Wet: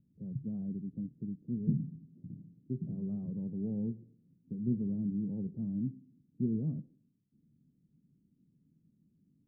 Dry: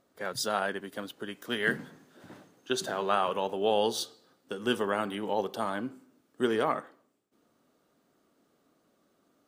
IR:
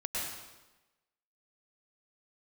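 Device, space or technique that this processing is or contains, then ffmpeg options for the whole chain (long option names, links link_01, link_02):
the neighbour's flat through the wall: -af "lowpass=frequency=200:width=0.5412,lowpass=frequency=200:width=1.3066,equalizer=frequency=150:width_type=o:width=0.64:gain=6.5,volume=7.5dB"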